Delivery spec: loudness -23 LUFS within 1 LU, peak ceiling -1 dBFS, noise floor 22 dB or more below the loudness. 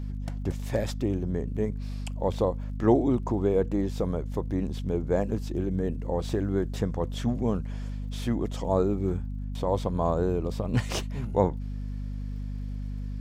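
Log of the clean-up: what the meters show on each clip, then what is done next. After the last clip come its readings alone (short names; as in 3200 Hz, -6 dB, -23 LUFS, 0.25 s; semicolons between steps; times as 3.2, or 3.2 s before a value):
ticks 46/s; hum 50 Hz; harmonics up to 250 Hz; hum level -31 dBFS; loudness -29.0 LUFS; peak -9.0 dBFS; loudness target -23.0 LUFS
-> de-click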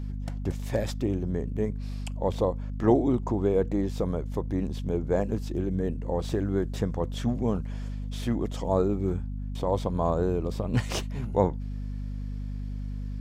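ticks 0.076/s; hum 50 Hz; harmonics up to 250 Hz; hum level -31 dBFS
-> de-hum 50 Hz, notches 5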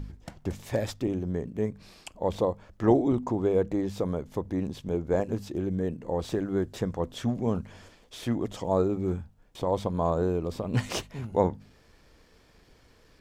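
hum none; loudness -29.5 LUFS; peak -9.0 dBFS; loudness target -23.0 LUFS
-> gain +6.5 dB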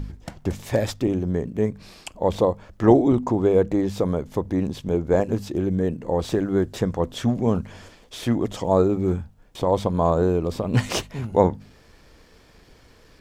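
loudness -23.0 LUFS; peak -2.5 dBFS; noise floor -53 dBFS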